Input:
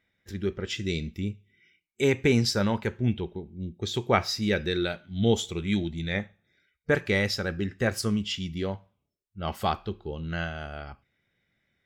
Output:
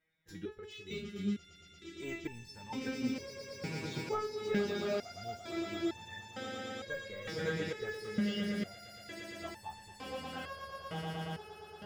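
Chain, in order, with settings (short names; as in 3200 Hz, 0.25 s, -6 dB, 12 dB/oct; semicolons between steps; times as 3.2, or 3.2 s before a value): swelling echo 0.115 s, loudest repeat 8, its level -13 dB; de-esser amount 100%; stepped resonator 2.2 Hz 160–890 Hz; gain +4.5 dB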